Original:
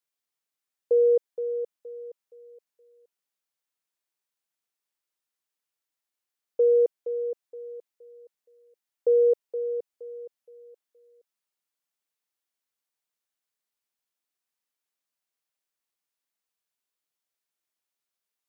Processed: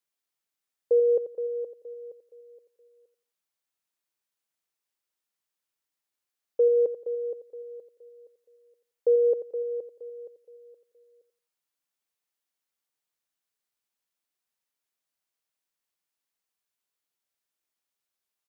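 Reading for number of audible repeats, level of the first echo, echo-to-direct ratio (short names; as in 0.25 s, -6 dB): 2, -12.0 dB, -11.5 dB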